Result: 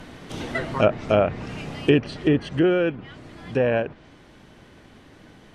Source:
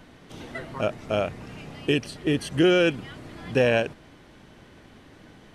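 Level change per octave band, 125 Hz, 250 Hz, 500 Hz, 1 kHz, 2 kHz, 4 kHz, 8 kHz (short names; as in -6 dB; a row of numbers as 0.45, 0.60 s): +3.5 dB, +3.0 dB, +2.5 dB, +4.0 dB, -0.5 dB, -3.5 dB, n/a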